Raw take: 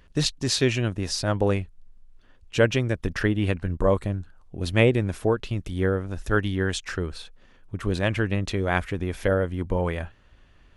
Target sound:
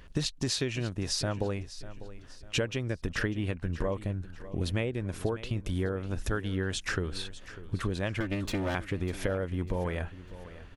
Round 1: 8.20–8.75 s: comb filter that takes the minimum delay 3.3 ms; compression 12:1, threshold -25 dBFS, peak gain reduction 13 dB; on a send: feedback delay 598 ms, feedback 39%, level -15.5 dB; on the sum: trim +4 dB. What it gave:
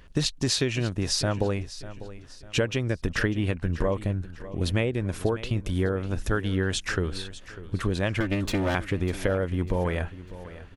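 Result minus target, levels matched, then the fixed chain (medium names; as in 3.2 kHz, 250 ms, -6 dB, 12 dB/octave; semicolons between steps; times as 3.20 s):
compression: peak gain reduction -5.5 dB
8.20–8.75 s: comb filter that takes the minimum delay 3.3 ms; compression 12:1, threshold -31 dBFS, peak gain reduction 18.5 dB; on a send: feedback delay 598 ms, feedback 39%, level -15.5 dB; on the sum: trim +4 dB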